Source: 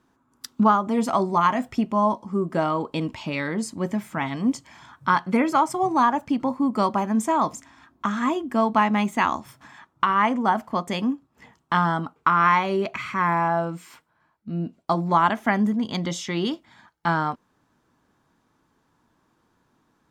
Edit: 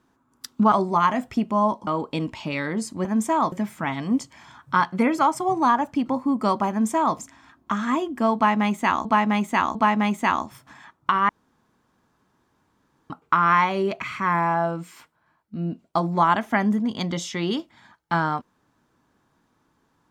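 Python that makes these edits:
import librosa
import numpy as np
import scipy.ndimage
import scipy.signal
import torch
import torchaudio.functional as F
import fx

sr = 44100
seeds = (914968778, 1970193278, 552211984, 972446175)

y = fx.edit(x, sr, fx.cut(start_s=0.72, length_s=0.41),
    fx.cut(start_s=2.28, length_s=0.4),
    fx.duplicate(start_s=7.04, length_s=0.47, to_s=3.86),
    fx.repeat(start_s=8.69, length_s=0.7, count=3),
    fx.room_tone_fill(start_s=10.23, length_s=1.81), tone=tone)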